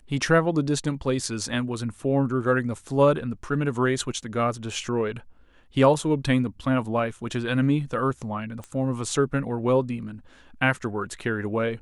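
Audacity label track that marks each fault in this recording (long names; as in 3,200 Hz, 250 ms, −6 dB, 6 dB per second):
8.640000	8.640000	click −23 dBFS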